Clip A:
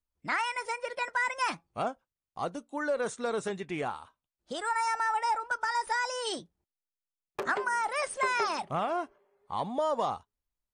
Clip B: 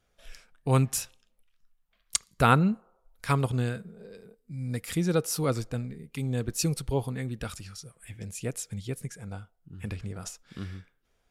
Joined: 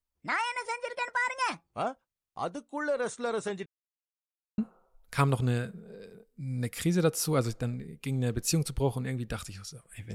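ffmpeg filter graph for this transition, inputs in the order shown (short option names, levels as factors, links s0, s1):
-filter_complex "[0:a]apad=whole_dur=10.14,atrim=end=10.14,asplit=2[s0][s1];[s0]atrim=end=3.66,asetpts=PTS-STARTPTS,afade=t=out:st=3.656:d=0.004:c=hsin[s2];[s1]atrim=start=3.66:end=4.58,asetpts=PTS-STARTPTS,volume=0[s3];[1:a]atrim=start=2.69:end=8.25,asetpts=PTS-STARTPTS,afade=t=in:d=0.004:c=hsin[s4];[s2][s3][s4]concat=n=3:v=0:a=1"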